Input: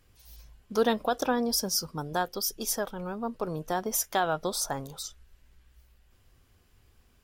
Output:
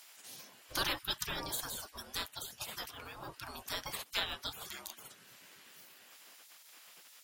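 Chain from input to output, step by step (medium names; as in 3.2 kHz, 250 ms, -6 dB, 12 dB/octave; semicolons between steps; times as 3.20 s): spectral gate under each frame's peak -25 dB weak; tape noise reduction on one side only encoder only; trim +9 dB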